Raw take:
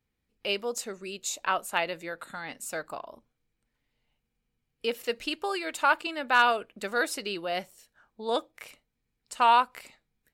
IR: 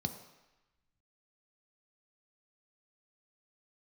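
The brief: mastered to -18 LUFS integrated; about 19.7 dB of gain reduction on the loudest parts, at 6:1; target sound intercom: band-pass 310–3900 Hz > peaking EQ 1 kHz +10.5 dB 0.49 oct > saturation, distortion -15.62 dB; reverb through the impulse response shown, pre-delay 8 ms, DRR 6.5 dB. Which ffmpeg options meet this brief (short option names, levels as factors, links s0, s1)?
-filter_complex "[0:a]acompressor=threshold=0.0126:ratio=6,asplit=2[s0][s1];[1:a]atrim=start_sample=2205,adelay=8[s2];[s1][s2]afir=irnorm=-1:irlink=0,volume=0.422[s3];[s0][s3]amix=inputs=2:normalize=0,highpass=310,lowpass=3900,equalizer=f=1000:t=o:w=0.49:g=10.5,asoftclip=threshold=0.0473,volume=12.6"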